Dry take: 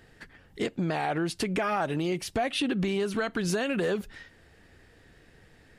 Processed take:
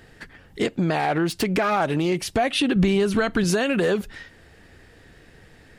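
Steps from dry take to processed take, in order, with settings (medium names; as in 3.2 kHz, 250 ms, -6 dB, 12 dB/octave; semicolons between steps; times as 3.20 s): 0.99–2.16 s: self-modulated delay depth 0.063 ms; 2.76–3.44 s: bass shelf 120 Hz +11.5 dB; trim +6.5 dB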